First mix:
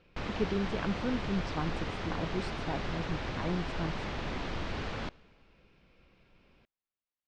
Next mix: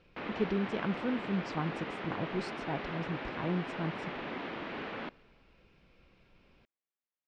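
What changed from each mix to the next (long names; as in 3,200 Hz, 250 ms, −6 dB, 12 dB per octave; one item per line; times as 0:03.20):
background: add Chebyshev band-pass filter 250–2,600 Hz, order 2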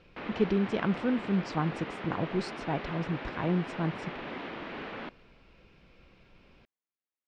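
speech +5.0 dB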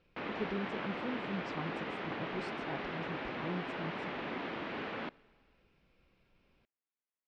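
speech −12.0 dB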